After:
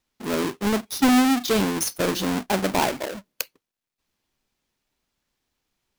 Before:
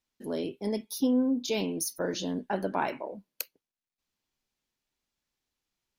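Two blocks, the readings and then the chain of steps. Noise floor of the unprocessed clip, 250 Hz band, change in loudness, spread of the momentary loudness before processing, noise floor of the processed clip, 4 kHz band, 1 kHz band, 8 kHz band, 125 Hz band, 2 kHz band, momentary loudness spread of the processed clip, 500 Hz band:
below −85 dBFS, +7.5 dB, +8.0 dB, 13 LU, below −85 dBFS, +10.5 dB, +10.0 dB, +8.5 dB, +9.5 dB, +12.0 dB, 14 LU, +6.0 dB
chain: each half-wave held at its own peak
level +4 dB

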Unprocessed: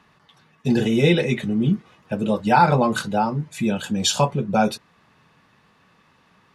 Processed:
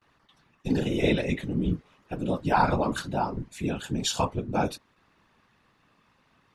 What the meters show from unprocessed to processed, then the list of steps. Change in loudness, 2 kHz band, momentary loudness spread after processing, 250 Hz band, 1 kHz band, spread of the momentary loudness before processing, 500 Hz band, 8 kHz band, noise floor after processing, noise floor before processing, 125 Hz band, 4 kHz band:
−7.0 dB, −7.0 dB, 10 LU, −7.5 dB, −7.5 dB, 9 LU, −7.0 dB, −7.5 dB, −67 dBFS, −59 dBFS, −7.5 dB, −7.5 dB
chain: random phases in short frames
noise gate with hold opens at −49 dBFS
level −7 dB

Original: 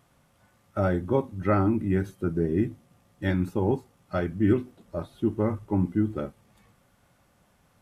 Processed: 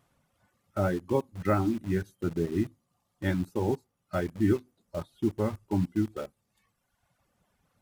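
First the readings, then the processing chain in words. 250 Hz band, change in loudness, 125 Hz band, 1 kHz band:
−3.5 dB, −3.0 dB, −4.0 dB, −2.5 dB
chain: reverb reduction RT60 1.3 s
in parallel at −6 dB: bit-depth reduction 6 bits, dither none
on the sum: level −5.5 dB

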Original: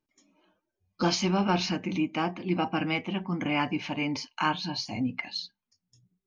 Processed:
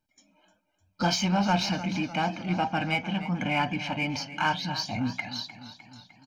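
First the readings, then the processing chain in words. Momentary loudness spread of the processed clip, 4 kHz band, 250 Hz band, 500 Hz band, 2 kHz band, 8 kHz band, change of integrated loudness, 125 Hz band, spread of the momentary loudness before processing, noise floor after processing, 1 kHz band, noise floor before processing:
9 LU, +1.5 dB, −0.5 dB, −1.0 dB, +3.0 dB, can't be measured, +1.0 dB, +2.5 dB, 7 LU, −75 dBFS, +2.5 dB, below −85 dBFS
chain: comb filter 1.3 ms, depth 69%
in parallel at −5.5 dB: soft clipping −31 dBFS, distortion −6 dB
on the sum: feedback echo with a swinging delay time 302 ms, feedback 57%, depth 66 cents, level −14 dB
level −2 dB

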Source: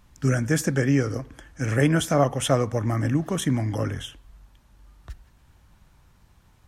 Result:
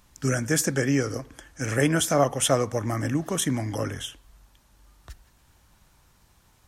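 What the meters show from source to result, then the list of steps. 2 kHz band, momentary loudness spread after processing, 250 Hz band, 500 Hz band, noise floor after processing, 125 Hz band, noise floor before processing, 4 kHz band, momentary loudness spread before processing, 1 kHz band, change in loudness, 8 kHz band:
0.0 dB, 12 LU, −2.5 dB, −0.5 dB, −61 dBFS, −4.5 dB, −58 dBFS, +2.5 dB, 11 LU, 0.0 dB, −1.0 dB, +5.5 dB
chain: bass and treble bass −5 dB, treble +6 dB

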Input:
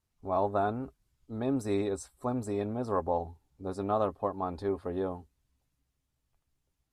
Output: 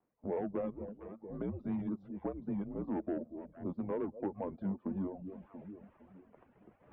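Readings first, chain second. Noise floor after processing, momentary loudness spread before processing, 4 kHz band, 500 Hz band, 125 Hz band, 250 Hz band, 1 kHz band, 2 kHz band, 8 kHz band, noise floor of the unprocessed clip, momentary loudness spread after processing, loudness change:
−68 dBFS, 10 LU, below −20 dB, −8.5 dB, −5.5 dB, −2.0 dB, −14.5 dB, −10.5 dB, below −30 dB, −81 dBFS, 13 LU, −7.0 dB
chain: sub-octave generator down 1 octave, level −2 dB
dynamic equaliser 420 Hz, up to +5 dB, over −43 dBFS, Q 1.4
soft clipping −21 dBFS, distortion −15 dB
reversed playback
upward compression, threshold −36 dBFS
reversed playback
delay that swaps between a low-pass and a high-pass 228 ms, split 890 Hz, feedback 54%, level −12.5 dB
pitch vibrato 5.3 Hz 68 cents
low-pass that shuts in the quiet parts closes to 1,500 Hz, open at −28 dBFS
tilt shelving filter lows +7.5 dB, about 750 Hz
single-sideband voice off tune −190 Hz 420–3,000 Hz
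downward compressor 2 to 1, threshold −52 dBFS, peak gain reduction 15 dB
reverb reduction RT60 0.61 s
level +7.5 dB

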